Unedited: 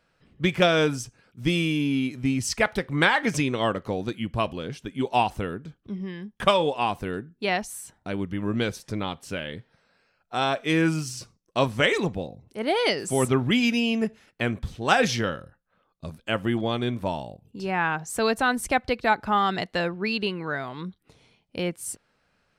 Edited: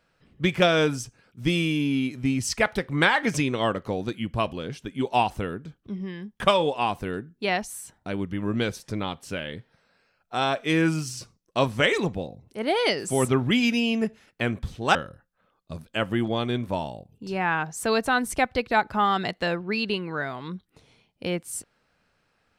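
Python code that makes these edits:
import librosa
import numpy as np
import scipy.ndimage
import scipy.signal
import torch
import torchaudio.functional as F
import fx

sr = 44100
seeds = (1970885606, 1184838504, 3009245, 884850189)

y = fx.edit(x, sr, fx.cut(start_s=14.95, length_s=0.33), tone=tone)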